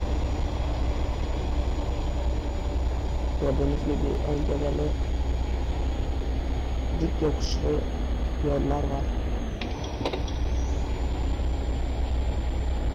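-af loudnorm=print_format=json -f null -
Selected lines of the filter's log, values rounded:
"input_i" : "-29.1",
"input_tp" : "-13.3",
"input_lra" : "1.5",
"input_thresh" : "-39.1",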